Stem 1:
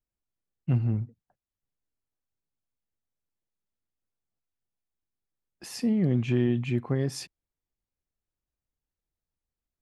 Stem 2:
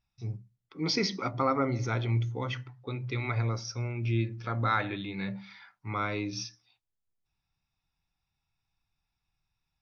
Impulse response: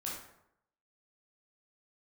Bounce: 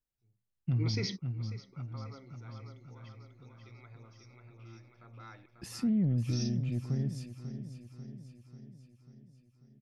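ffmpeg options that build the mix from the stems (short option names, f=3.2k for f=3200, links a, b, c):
-filter_complex "[0:a]asubboost=boost=6:cutoff=230,asoftclip=type=tanh:threshold=-6.5dB,volume=-4.5dB,afade=t=out:st=5.65:d=0.6:silence=0.298538,asplit=3[a][b][c];[b]volume=-12dB[d];[1:a]volume=-1dB,asplit=3[e][f][g];[e]atrim=end=4.92,asetpts=PTS-STARTPTS,afade=t=out:st=4.916:d=0.004:c=hsin[h];[f]atrim=start=4.92:end=6.29,asetpts=PTS-STARTPTS,volume=0[i];[g]atrim=start=6.29,asetpts=PTS-STARTPTS,afade=t=in:d=0.004:c=hsin[j];[h][i][j]concat=n=3:v=0:a=1,asplit=2[k][l];[l]volume=-23dB[m];[c]apad=whole_len=432697[n];[k][n]sidechaingate=range=-37dB:threshold=-43dB:ratio=16:detection=peak[o];[d][m]amix=inputs=2:normalize=0,aecho=0:1:542|1084|1626|2168|2710|3252|3794|4336|4878:1|0.57|0.325|0.185|0.106|0.0602|0.0343|0.0195|0.0111[p];[a][o][p]amix=inputs=3:normalize=0,alimiter=limit=-23.5dB:level=0:latency=1:release=87"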